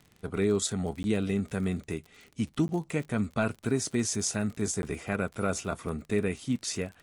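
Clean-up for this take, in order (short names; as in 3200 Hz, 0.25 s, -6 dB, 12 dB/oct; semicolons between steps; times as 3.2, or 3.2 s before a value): de-click; interpolate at 1.03/2.68/4.82, 11 ms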